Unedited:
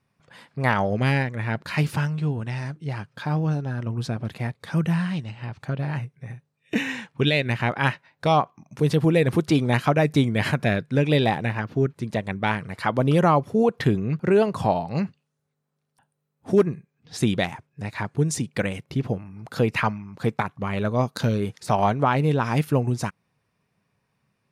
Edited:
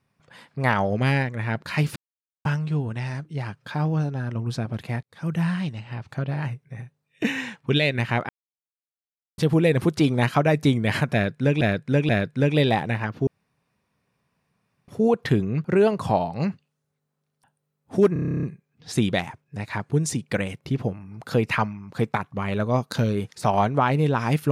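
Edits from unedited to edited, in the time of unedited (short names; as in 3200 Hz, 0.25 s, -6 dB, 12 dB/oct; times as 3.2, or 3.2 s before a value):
1.96 insert silence 0.49 s
4.54–4.97 fade in
7.8–8.89 mute
10.64–11.12 loop, 3 plays
11.82–13.43 room tone
16.68 stutter 0.03 s, 11 plays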